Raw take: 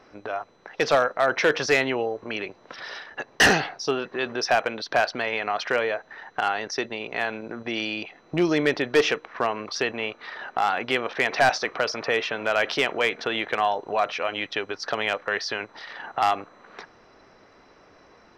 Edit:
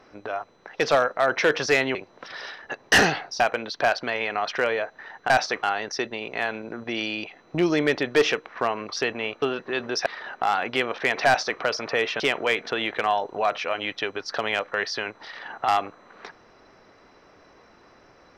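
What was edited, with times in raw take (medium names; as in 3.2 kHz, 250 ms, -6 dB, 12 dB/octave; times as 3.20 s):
1.95–2.43 s: delete
3.88–4.52 s: move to 10.21 s
11.42–11.75 s: copy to 6.42 s
12.35–12.74 s: delete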